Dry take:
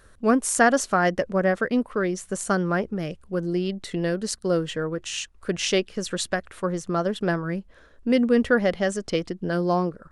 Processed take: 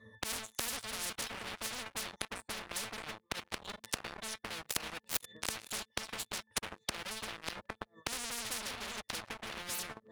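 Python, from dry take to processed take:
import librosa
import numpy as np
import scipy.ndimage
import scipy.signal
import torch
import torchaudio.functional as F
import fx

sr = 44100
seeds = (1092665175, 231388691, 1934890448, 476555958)

y = fx.spec_ripple(x, sr, per_octave=1.2, drift_hz=-1.9, depth_db=15)
y = fx.low_shelf(y, sr, hz=80.0, db=-10.0)
y = fx.octave_resonator(y, sr, note='A', decay_s=0.26)
y = fx.echo_feedback(y, sr, ms=587, feedback_pct=24, wet_db=-16.0)
y = fx.leveller(y, sr, passes=5)
y = fx.gate_flip(y, sr, shuts_db=-29.0, range_db=-32)
y = scipy.signal.sosfilt(scipy.signal.butter(2, 55.0, 'highpass', fs=sr, output='sos'), y)
y = fx.peak_eq(y, sr, hz=10000.0, db=7.5, octaves=0.42)
y = fx.leveller(y, sr, passes=2)
y = fx.spectral_comp(y, sr, ratio=10.0)
y = F.gain(torch.from_numpy(y), 12.0).numpy()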